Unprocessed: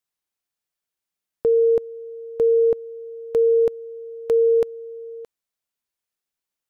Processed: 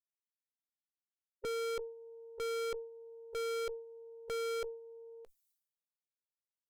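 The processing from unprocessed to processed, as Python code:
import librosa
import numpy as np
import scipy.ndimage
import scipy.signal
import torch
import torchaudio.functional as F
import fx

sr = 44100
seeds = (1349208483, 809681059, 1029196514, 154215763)

y = fx.bin_expand(x, sr, power=2.0)
y = fx.tube_stage(y, sr, drive_db=40.0, bias=0.4)
y = fx.sustainer(y, sr, db_per_s=82.0)
y = y * 10.0 ** (4.0 / 20.0)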